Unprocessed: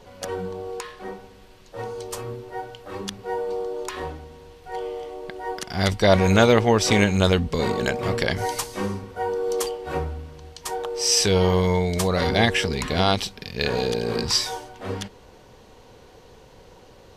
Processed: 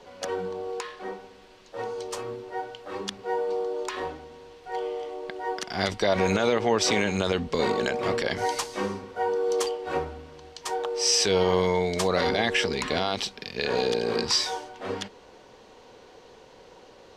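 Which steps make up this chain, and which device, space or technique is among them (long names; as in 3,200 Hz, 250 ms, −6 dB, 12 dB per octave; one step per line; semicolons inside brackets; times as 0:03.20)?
DJ mixer with the lows and highs turned down (three-way crossover with the lows and the highs turned down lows −12 dB, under 220 Hz, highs −13 dB, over 7,900 Hz; brickwall limiter −12.5 dBFS, peak gain reduction 10.5 dB)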